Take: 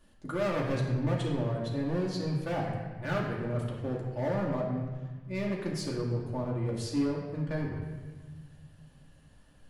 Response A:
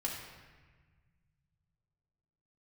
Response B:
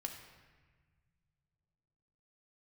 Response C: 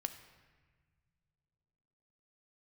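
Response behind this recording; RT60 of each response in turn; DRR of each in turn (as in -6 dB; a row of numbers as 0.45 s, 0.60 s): A; 1.4 s, 1.5 s, no single decay rate; -3.5 dB, 2.5 dB, 7.5 dB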